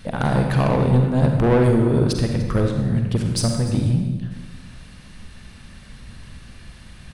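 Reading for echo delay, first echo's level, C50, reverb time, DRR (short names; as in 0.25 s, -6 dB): 0.296 s, -17.0 dB, 3.5 dB, 1.2 s, 3.0 dB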